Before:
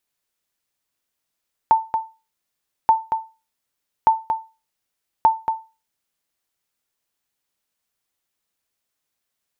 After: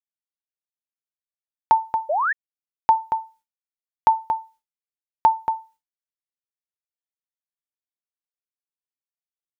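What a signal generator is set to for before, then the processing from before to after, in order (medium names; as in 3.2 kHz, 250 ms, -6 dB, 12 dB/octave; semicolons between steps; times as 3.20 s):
sonar ping 891 Hz, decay 0.29 s, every 1.18 s, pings 4, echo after 0.23 s, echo -7.5 dB -6 dBFS
expander -47 dBFS; painted sound rise, 2.09–2.33 s, 550–1900 Hz -21 dBFS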